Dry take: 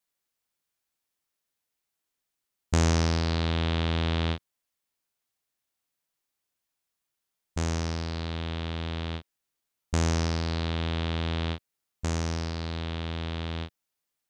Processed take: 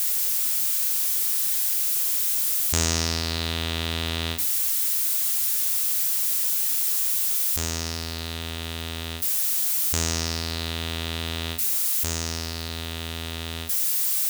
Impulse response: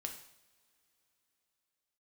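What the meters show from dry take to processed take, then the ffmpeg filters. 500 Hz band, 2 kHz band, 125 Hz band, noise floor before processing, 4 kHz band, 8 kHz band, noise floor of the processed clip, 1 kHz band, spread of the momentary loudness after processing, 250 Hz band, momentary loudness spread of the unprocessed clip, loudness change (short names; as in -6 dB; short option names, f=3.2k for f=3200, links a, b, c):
-1.0 dB, +4.5 dB, -3.0 dB, -84 dBFS, +9.0 dB, +18.5 dB, -33 dBFS, 0.0 dB, 11 LU, -2.5 dB, 10 LU, +7.5 dB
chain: -filter_complex "[0:a]aeval=exprs='val(0)+0.5*0.0251*sgn(val(0))':c=same,asplit=2[a][b];[1:a]atrim=start_sample=2205[c];[b][c]afir=irnorm=-1:irlink=0,volume=2.5dB[d];[a][d]amix=inputs=2:normalize=0,crystalizer=i=6:c=0,volume=-10dB"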